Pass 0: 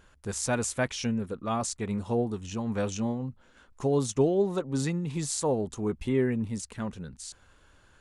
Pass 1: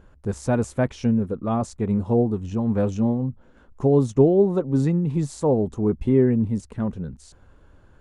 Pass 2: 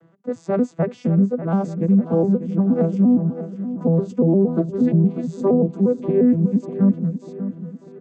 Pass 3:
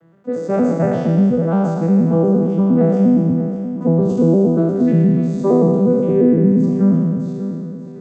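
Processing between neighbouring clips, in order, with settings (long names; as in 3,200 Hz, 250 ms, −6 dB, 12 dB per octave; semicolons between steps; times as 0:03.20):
tilt shelving filter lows +9.5 dB, about 1,300 Hz
vocoder with an arpeggio as carrier minor triad, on E3, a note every 117 ms; brickwall limiter −16 dBFS, peak gain reduction 9.5 dB; on a send: repeating echo 593 ms, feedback 50%, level −12 dB; on the sum: level +6.5 dB
peak hold with a decay on every bin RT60 1.87 s; level +1 dB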